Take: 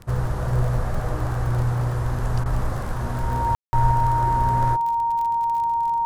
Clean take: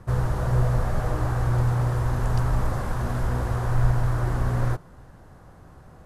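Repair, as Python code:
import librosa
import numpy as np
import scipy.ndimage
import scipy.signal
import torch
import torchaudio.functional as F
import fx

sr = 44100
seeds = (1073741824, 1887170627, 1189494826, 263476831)

y = fx.fix_declick_ar(x, sr, threshold=6.5)
y = fx.notch(y, sr, hz=930.0, q=30.0)
y = fx.fix_ambience(y, sr, seeds[0], print_start_s=0.0, print_end_s=0.5, start_s=3.55, end_s=3.73)
y = fx.fix_interpolate(y, sr, at_s=(2.44,), length_ms=16.0)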